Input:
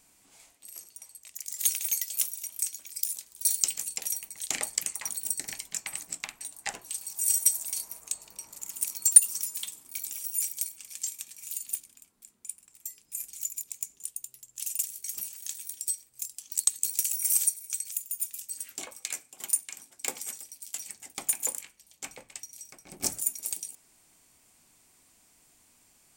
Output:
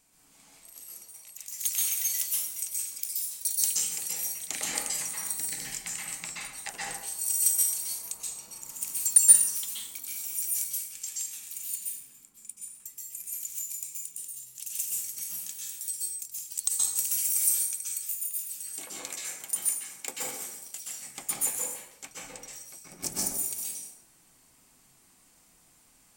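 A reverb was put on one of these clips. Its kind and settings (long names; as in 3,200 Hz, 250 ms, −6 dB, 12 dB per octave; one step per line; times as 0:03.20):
dense smooth reverb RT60 0.86 s, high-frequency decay 0.6×, pre-delay 115 ms, DRR −5.5 dB
level −4.5 dB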